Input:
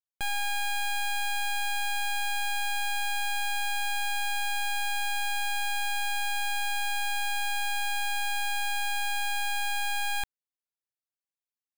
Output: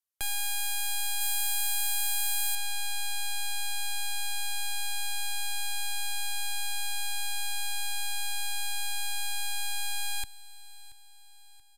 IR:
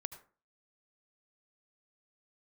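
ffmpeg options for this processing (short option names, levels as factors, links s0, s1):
-filter_complex "[0:a]acrossover=split=300|3000[s0][s1][s2];[s1]acompressor=threshold=0.00631:ratio=3[s3];[s0][s3][s2]amix=inputs=3:normalize=0,aecho=1:1:680|1360|2040|2720:0.112|0.0572|0.0292|0.0149,aresample=32000,aresample=44100,asetnsamples=n=441:p=0,asendcmd='1.21 highshelf g 8;2.55 highshelf g -5',highshelf=f=9300:g=2.5,crystalizer=i=1:c=0,equalizer=f=190:t=o:w=0.51:g=-15"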